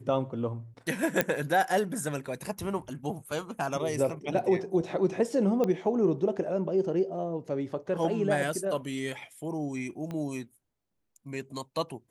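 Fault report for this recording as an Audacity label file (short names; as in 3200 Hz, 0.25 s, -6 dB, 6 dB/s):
1.210000	1.210000	pop -8 dBFS
5.640000	5.640000	pop -17 dBFS
10.110000	10.110000	pop -25 dBFS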